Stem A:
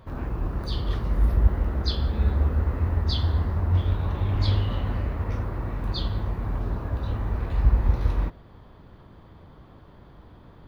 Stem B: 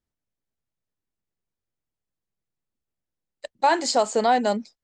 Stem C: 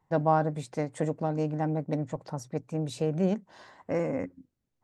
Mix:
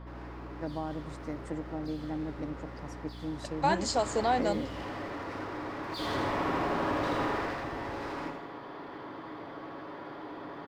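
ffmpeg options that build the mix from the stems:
ffmpeg -i stem1.wav -i stem2.wav -i stem3.wav -filter_complex "[0:a]highpass=frequency=320:poles=1,aecho=1:1:7.2:0.34,asplit=2[link_01][link_02];[link_02]highpass=frequency=720:poles=1,volume=36dB,asoftclip=type=tanh:threshold=-18.5dB[link_03];[link_01][link_03]amix=inputs=2:normalize=0,lowpass=frequency=1200:poles=1,volume=-6dB,volume=-2dB,afade=type=in:start_time=3.5:duration=0.23:silence=0.398107,afade=type=in:start_time=5.88:duration=0.28:silence=0.251189,afade=type=out:start_time=7.21:duration=0.36:silence=0.281838,asplit=2[link_04][link_05];[link_05]volume=-5dB[link_06];[1:a]aeval=exprs='val(0)+0.0158*(sin(2*PI*60*n/s)+sin(2*PI*2*60*n/s)/2+sin(2*PI*3*60*n/s)/3+sin(2*PI*4*60*n/s)/4+sin(2*PI*5*60*n/s)/5)':channel_layout=same,volume=-8dB,asplit=2[link_07][link_08];[2:a]adelay=500,volume=0.5dB[link_09];[link_08]apad=whole_len=235422[link_10];[link_09][link_10]sidechaingate=range=-12dB:threshold=-39dB:ratio=16:detection=peak[link_11];[link_04][link_11]amix=inputs=2:normalize=0,equalizer=frequency=315:width_type=o:width=0.33:gain=11,equalizer=frequency=2000:width_type=o:width=0.33:gain=4,equalizer=frequency=5000:width_type=o:width=0.33:gain=6,acompressor=threshold=-31dB:ratio=6,volume=0dB[link_12];[link_06]aecho=0:1:80|160|240|320|400|480|560:1|0.47|0.221|0.104|0.0488|0.0229|0.0108[link_13];[link_07][link_12][link_13]amix=inputs=3:normalize=0" out.wav

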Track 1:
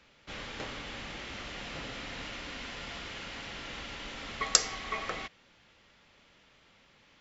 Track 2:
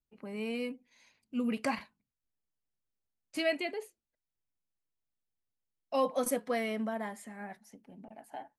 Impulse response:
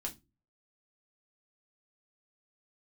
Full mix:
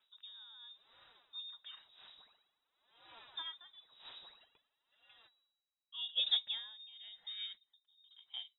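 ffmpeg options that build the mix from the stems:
-filter_complex "[0:a]aphaser=in_gain=1:out_gain=1:delay=4.5:decay=0.71:speed=0.49:type=sinusoidal,volume=-13.5dB,afade=type=in:start_time=2.92:duration=0.22:silence=0.398107,afade=type=out:start_time=4.15:duration=0.31:silence=0.316228[link_01];[1:a]lowshelf=frequency=150:gain=10.5,volume=1dB[link_02];[link_01][link_02]amix=inputs=2:normalize=0,lowpass=frequency=3300:width_type=q:width=0.5098,lowpass=frequency=3300:width_type=q:width=0.6013,lowpass=frequency=3300:width_type=q:width=0.9,lowpass=frequency=3300:width_type=q:width=2.563,afreqshift=-3900,equalizer=frequency=2100:width_type=o:width=0.85:gain=-9.5,aeval=exprs='val(0)*pow(10,-22*(0.5-0.5*cos(2*PI*0.95*n/s))/20)':channel_layout=same"

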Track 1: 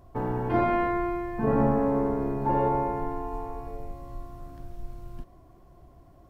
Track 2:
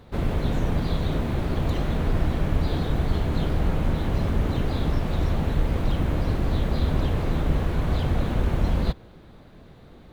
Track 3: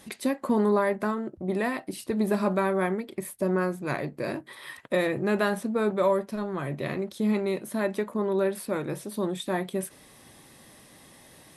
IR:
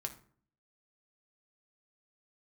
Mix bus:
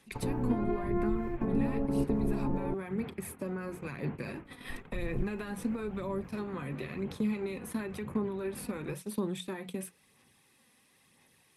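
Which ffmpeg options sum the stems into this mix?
-filter_complex "[0:a]alimiter=limit=-18.5dB:level=0:latency=1:release=166,acontrast=29,acrossover=split=480[link_01][link_02];[link_01]aeval=exprs='val(0)*(1-0.5/2+0.5/2*cos(2*PI*4.4*n/s))':channel_layout=same[link_03];[link_02]aeval=exprs='val(0)*(1-0.5/2-0.5/2*cos(2*PI*4.4*n/s))':channel_layout=same[link_04];[link_03][link_04]amix=inputs=2:normalize=0,volume=-3.5dB,asplit=3[link_05][link_06][link_07];[link_05]atrim=end=2.74,asetpts=PTS-STARTPTS,afade=type=out:start_time=2.736:duration=0.004:curve=hsin[link_08];[link_06]atrim=start=2.74:end=4.45,asetpts=PTS-STARTPTS,volume=0[link_09];[link_07]atrim=start=4.45,asetpts=PTS-STARTPTS,afade=type=in:duration=0.004:curve=hsin[link_10];[link_08][link_09][link_10]concat=n=3:v=0:a=1[link_11];[1:a]highpass=180,flanger=delay=19.5:depth=3.6:speed=0.45,lowpass=frequency=2300:width=0.5412,lowpass=frequency=2300:width=1.3066,volume=-10.5dB[link_12];[2:a]highpass=frequency=91:poles=1,bandreject=frequency=60:width_type=h:width=6,bandreject=frequency=120:width_type=h:width=6,bandreject=frequency=180:width_type=h:width=6,volume=-1dB,asplit=2[link_13][link_14];[link_14]apad=whole_len=277516[link_15];[link_11][link_15]sidechaingate=range=-17dB:threshold=-41dB:ratio=16:detection=peak[link_16];[link_12][link_13]amix=inputs=2:normalize=0,equalizer=frequency=315:width_type=o:width=0.33:gain=-6,equalizer=frequency=630:width_type=o:width=0.33:gain=-10,equalizer=frequency=2500:width_type=o:width=0.33:gain=7,alimiter=level_in=1dB:limit=-24dB:level=0:latency=1:release=111,volume=-1dB,volume=0dB[link_17];[link_16][link_17]amix=inputs=2:normalize=0,agate=range=-13dB:threshold=-40dB:ratio=16:detection=peak,acrossover=split=360[link_18][link_19];[link_19]acompressor=threshold=-41dB:ratio=6[link_20];[link_18][link_20]amix=inputs=2:normalize=0,aphaser=in_gain=1:out_gain=1:delay=4.1:decay=0.37:speed=0.98:type=sinusoidal"

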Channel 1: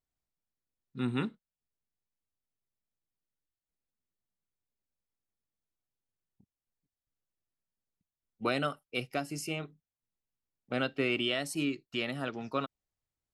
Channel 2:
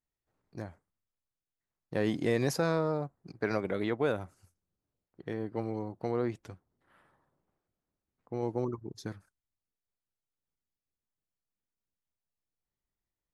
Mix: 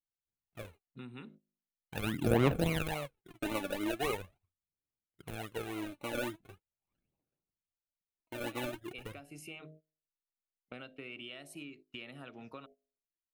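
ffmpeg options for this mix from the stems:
ffmpeg -i stem1.wav -i stem2.wav -filter_complex "[0:a]bandreject=frequency=51.96:width_type=h:width=4,bandreject=frequency=103.92:width_type=h:width=4,bandreject=frequency=155.88:width_type=h:width=4,bandreject=frequency=207.84:width_type=h:width=4,bandreject=frequency=259.8:width_type=h:width=4,bandreject=frequency=311.76:width_type=h:width=4,bandreject=frequency=363.72:width_type=h:width=4,bandreject=frequency=415.68:width_type=h:width=4,bandreject=frequency=467.64:width_type=h:width=4,bandreject=frequency=519.6:width_type=h:width=4,bandreject=frequency=571.56:width_type=h:width=4,bandreject=frequency=623.52:width_type=h:width=4,bandreject=frequency=675.48:width_type=h:width=4,bandreject=frequency=727.44:width_type=h:width=4,acompressor=threshold=-38dB:ratio=10,volume=-6dB[link_01];[1:a]equalizer=frequency=9800:width_type=o:width=0.42:gain=-7,acrusher=samples=36:mix=1:aa=0.000001:lfo=1:lforange=21.6:lforate=3.6,aphaser=in_gain=1:out_gain=1:delay=3.5:decay=0.68:speed=0.41:type=sinusoidal,volume=-6.5dB,asplit=2[link_02][link_03];[link_03]apad=whole_len=588278[link_04];[link_01][link_04]sidechaincompress=threshold=-46dB:ratio=8:attack=16:release=221[link_05];[link_05][link_02]amix=inputs=2:normalize=0,agate=range=-18dB:threshold=-57dB:ratio=16:detection=peak,superequalizer=12b=1.58:14b=0.398:15b=0.562" out.wav

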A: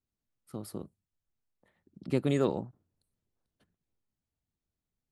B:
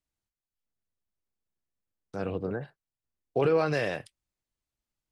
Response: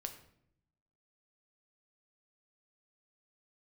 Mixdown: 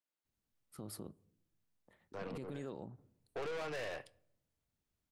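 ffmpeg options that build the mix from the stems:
-filter_complex "[0:a]acompressor=threshold=-38dB:ratio=2,adelay=250,volume=0dB,asplit=2[link_01][link_02];[link_02]volume=-16dB[link_03];[1:a]highpass=frequency=120:width=0.5412,highpass=frequency=120:width=1.3066,bass=frequency=250:gain=-13,treble=frequency=4000:gain=-6,aeval=exprs='(tanh(56.2*val(0)+0.3)-tanh(0.3))/56.2':channel_layout=same,volume=-4.5dB,asplit=2[link_04][link_05];[link_05]volume=-9.5dB[link_06];[2:a]atrim=start_sample=2205[link_07];[link_03][link_06]amix=inputs=2:normalize=0[link_08];[link_08][link_07]afir=irnorm=-1:irlink=0[link_09];[link_01][link_04][link_09]amix=inputs=3:normalize=0,alimiter=level_in=11dB:limit=-24dB:level=0:latency=1:release=139,volume=-11dB"

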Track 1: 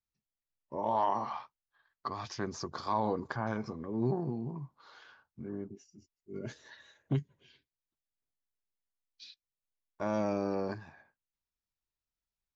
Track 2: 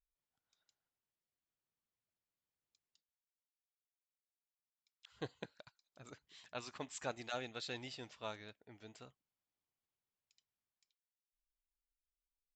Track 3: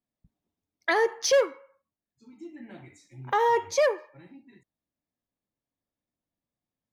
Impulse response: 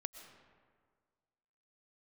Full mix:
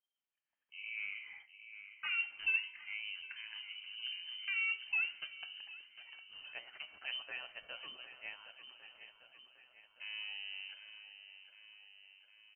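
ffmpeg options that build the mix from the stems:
-filter_complex "[0:a]volume=-13dB,asplit=2[link_01][link_02];[link_02]volume=-10.5dB[link_03];[1:a]volume=-2dB,asplit=2[link_04][link_05];[link_05]volume=-12dB[link_06];[2:a]equalizer=frequency=2200:width_type=o:width=2.7:gain=-13,adelay=1150,volume=-8dB,asplit=2[link_07][link_08];[link_08]volume=-18.5dB[link_09];[link_03][link_06][link_09]amix=inputs=3:normalize=0,aecho=0:1:756|1512|2268|3024|3780|4536|5292|6048|6804|7560:1|0.6|0.36|0.216|0.13|0.0778|0.0467|0.028|0.0168|0.0101[link_10];[link_01][link_04][link_07][link_10]amix=inputs=4:normalize=0,bandreject=frequency=111.8:width_type=h:width=4,bandreject=frequency=223.6:width_type=h:width=4,bandreject=frequency=335.4:width_type=h:width=4,bandreject=frequency=447.2:width_type=h:width=4,bandreject=frequency=559:width_type=h:width=4,bandreject=frequency=670.8:width_type=h:width=4,bandreject=frequency=782.6:width_type=h:width=4,bandreject=frequency=894.4:width_type=h:width=4,bandreject=frequency=1006.2:width_type=h:width=4,bandreject=frequency=1118:width_type=h:width=4,bandreject=frequency=1229.8:width_type=h:width=4,bandreject=frequency=1341.6:width_type=h:width=4,bandreject=frequency=1453.4:width_type=h:width=4,bandreject=frequency=1565.2:width_type=h:width=4,bandreject=frequency=1677:width_type=h:width=4,bandreject=frequency=1788.8:width_type=h:width=4,bandreject=frequency=1900.6:width_type=h:width=4,bandreject=frequency=2012.4:width_type=h:width=4,bandreject=frequency=2124.2:width_type=h:width=4,bandreject=frequency=2236:width_type=h:width=4,bandreject=frequency=2347.8:width_type=h:width=4,bandreject=frequency=2459.6:width_type=h:width=4,bandreject=frequency=2571.4:width_type=h:width=4,bandreject=frequency=2683.2:width_type=h:width=4,bandreject=frequency=2795:width_type=h:width=4,bandreject=frequency=2906.8:width_type=h:width=4,bandreject=frequency=3018.6:width_type=h:width=4,bandreject=frequency=3130.4:width_type=h:width=4,bandreject=frequency=3242.2:width_type=h:width=4,bandreject=frequency=3354:width_type=h:width=4,bandreject=frequency=3465.8:width_type=h:width=4,bandreject=frequency=3577.6:width_type=h:width=4,bandreject=frequency=3689.4:width_type=h:width=4,bandreject=frequency=3801.2:width_type=h:width=4,bandreject=frequency=3913:width_type=h:width=4,bandreject=frequency=4024.8:width_type=h:width=4,bandreject=frequency=4136.6:width_type=h:width=4,bandreject=frequency=4248.4:width_type=h:width=4,lowpass=frequency=2700:width_type=q:width=0.5098,lowpass=frequency=2700:width_type=q:width=0.6013,lowpass=frequency=2700:width_type=q:width=0.9,lowpass=frequency=2700:width_type=q:width=2.563,afreqshift=-3200"

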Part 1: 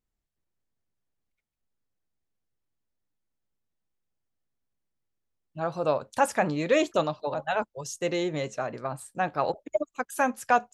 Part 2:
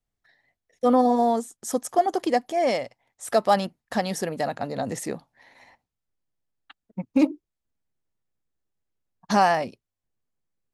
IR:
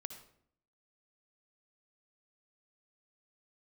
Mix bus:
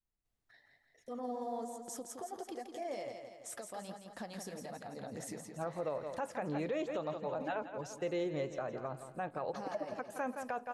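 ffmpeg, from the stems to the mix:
-filter_complex "[0:a]highshelf=frequency=3700:gain=-10,volume=-6.5dB,asplit=2[link_01][link_02];[link_02]volume=-13dB[link_03];[1:a]acompressor=threshold=-29dB:ratio=6,alimiter=level_in=8.5dB:limit=-24dB:level=0:latency=1:release=440,volume=-8.5dB,flanger=delay=2.4:depth=8.3:regen=-43:speed=1.3:shape=sinusoidal,adelay=250,volume=1dB,asplit=2[link_04][link_05];[link_05]volume=-6.5dB[link_06];[link_03][link_06]amix=inputs=2:normalize=0,aecho=0:1:168|336|504|672|840|1008|1176|1344:1|0.52|0.27|0.141|0.0731|0.038|0.0198|0.0103[link_07];[link_01][link_04][link_07]amix=inputs=3:normalize=0,adynamicequalizer=threshold=0.00631:dfrequency=470:dqfactor=2.2:tfrequency=470:tqfactor=2.2:attack=5:release=100:ratio=0.375:range=2:mode=boostabove:tftype=bell,alimiter=level_in=4dB:limit=-24dB:level=0:latency=1:release=158,volume=-4dB"

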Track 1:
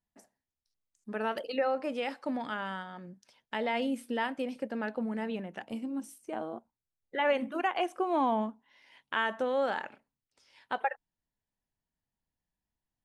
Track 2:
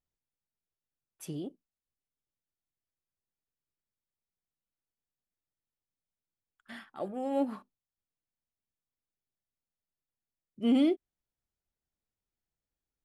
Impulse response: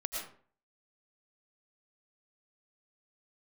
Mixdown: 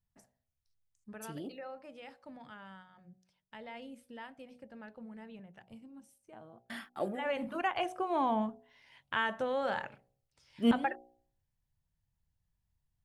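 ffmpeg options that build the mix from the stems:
-filter_complex "[0:a]lowshelf=frequency=180:width_type=q:width=1.5:gain=12.5,volume=9dB,afade=type=out:start_time=0.88:duration=0.34:silence=0.298538,afade=type=in:start_time=7.13:duration=0.35:silence=0.223872,asplit=2[link_01][link_02];[1:a]agate=range=-34dB:threshold=-52dB:ratio=16:detection=peak,highshelf=frequency=9800:gain=9.5,volume=2.5dB[link_03];[link_02]apad=whole_len=575142[link_04];[link_03][link_04]sidechaincompress=threshold=-51dB:ratio=8:attack=16:release=357[link_05];[link_01][link_05]amix=inputs=2:normalize=0,bandreject=frequency=61.14:width_type=h:width=4,bandreject=frequency=122.28:width_type=h:width=4,bandreject=frequency=183.42:width_type=h:width=4,bandreject=frequency=244.56:width_type=h:width=4,bandreject=frequency=305.7:width_type=h:width=4,bandreject=frequency=366.84:width_type=h:width=4,bandreject=frequency=427.98:width_type=h:width=4,bandreject=frequency=489.12:width_type=h:width=4,bandreject=frequency=550.26:width_type=h:width=4,bandreject=frequency=611.4:width_type=h:width=4,bandreject=frequency=672.54:width_type=h:width=4,bandreject=frequency=733.68:width_type=h:width=4,bandreject=frequency=794.82:width_type=h:width=4"

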